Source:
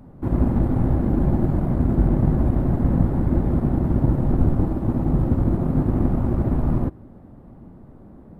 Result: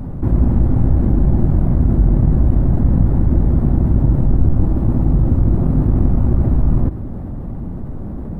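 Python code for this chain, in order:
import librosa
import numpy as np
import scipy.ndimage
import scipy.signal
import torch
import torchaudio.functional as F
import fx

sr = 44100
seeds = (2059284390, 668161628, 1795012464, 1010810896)

y = fx.low_shelf(x, sr, hz=140.0, db=11.5)
y = fx.env_flatten(y, sr, amount_pct=50)
y = y * 10.0 ** (-5.0 / 20.0)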